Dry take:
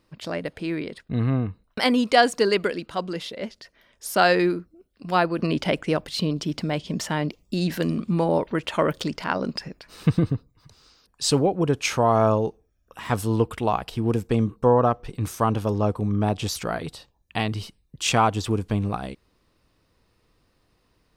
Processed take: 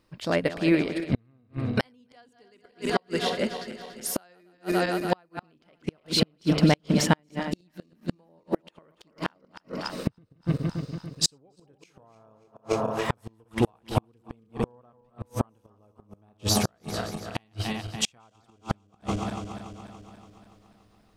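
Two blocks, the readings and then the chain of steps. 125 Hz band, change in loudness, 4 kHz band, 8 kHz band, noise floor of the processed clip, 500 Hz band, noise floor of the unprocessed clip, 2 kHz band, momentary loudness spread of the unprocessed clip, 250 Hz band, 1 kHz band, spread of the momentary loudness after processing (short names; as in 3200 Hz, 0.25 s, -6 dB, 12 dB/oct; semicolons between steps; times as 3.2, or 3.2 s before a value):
-5.0 dB, -4.5 dB, -2.0 dB, 0.0 dB, -65 dBFS, -7.0 dB, -67 dBFS, -6.0 dB, 12 LU, -3.5 dB, -9.0 dB, 16 LU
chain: regenerating reverse delay 0.143 s, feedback 76%, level -9 dB; flipped gate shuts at -15 dBFS, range -37 dB; upward expander 1.5:1, over -39 dBFS; gain +7.5 dB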